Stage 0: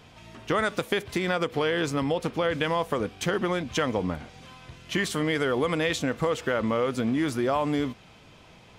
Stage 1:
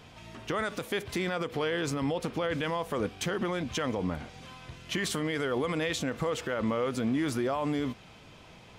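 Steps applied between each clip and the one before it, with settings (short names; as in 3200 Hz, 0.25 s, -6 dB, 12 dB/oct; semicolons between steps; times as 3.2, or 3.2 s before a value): limiter -21.5 dBFS, peak gain reduction 9.5 dB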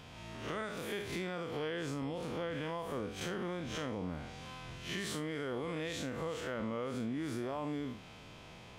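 time blur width 0.109 s; compressor 4:1, threshold -37 dBFS, peak gain reduction 9 dB; gain +1 dB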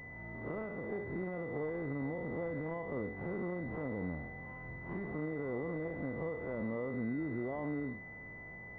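air absorption 130 m; pulse-width modulation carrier 2000 Hz; gain +1 dB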